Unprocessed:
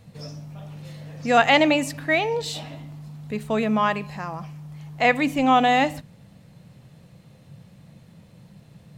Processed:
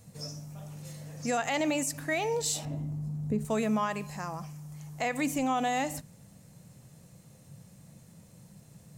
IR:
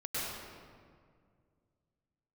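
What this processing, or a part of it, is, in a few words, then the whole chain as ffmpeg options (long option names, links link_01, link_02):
over-bright horn tweeter: -filter_complex "[0:a]asettb=1/sr,asplit=3[link_01][link_02][link_03];[link_01]atrim=end=2.654[link_04];[link_02]atrim=start=2.65:end=3.45,asetpts=PTS-STARTPTS,afade=type=in:duration=0.004:curve=qsin,afade=type=out:start_time=0.796:duration=0.004:curve=qsin,tiltshelf=frequency=780:gain=10[link_05];[link_03]atrim=start=3.446[link_06];[link_04][link_05]acrossfade=duration=0.004:curve1=hsin:curve2=qsin[link_07];[link_07][link_06]acrossfade=duration=0.004:curve1=qsin:curve2=hsin,highshelf=frequency=5000:width_type=q:width=1.5:gain=10.5,alimiter=limit=-15.5dB:level=0:latency=1:release=111,volume=-5dB"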